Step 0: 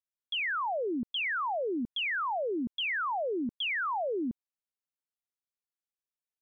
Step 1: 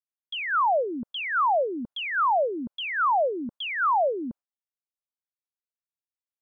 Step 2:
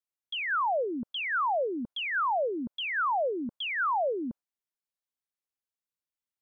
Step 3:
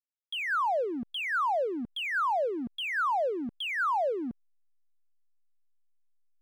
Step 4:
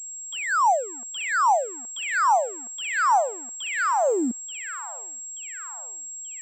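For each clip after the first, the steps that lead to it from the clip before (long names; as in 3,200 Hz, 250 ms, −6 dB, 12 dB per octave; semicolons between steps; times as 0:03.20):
noise gate with hold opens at −29 dBFS; flat-topped bell 880 Hz +10 dB
brickwall limiter −22.5 dBFS, peak gain reduction 4 dB; level −1.5 dB
slack as between gear wheels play −44 dBFS
high-pass filter sweep 800 Hz → 180 Hz, 0:03.69–0:04.49; delay with a high-pass on its return 881 ms, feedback 50%, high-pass 1,700 Hz, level −7.5 dB; switching amplifier with a slow clock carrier 7,600 Hz; level +2.5 dB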